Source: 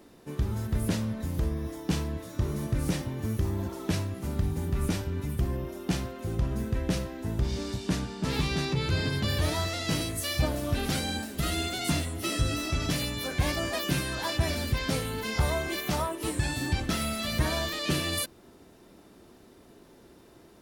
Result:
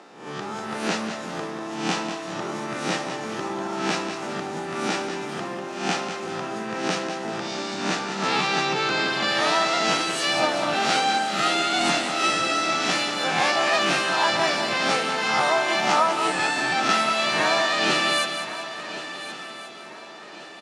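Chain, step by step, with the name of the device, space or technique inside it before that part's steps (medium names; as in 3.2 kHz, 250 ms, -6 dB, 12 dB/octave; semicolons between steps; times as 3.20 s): reverse spectral sustain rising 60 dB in 0.61 s; high-pass 310 Hz 6 dB/octave; television speaker (cabinet simulation 190–7500 Hz, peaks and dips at 270 Hz -6 dB, 790 Hz +10 dB, 1.3 kHz +8 dB, 1.8 kHz +3 dB, 2.6 kHz +4 dB); feedback delay 194 ms, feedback 42%, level -8.5 dB; shuffle delay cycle 1432 ms, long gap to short 3:1, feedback 37%, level -14 dB; trim +5.5 dB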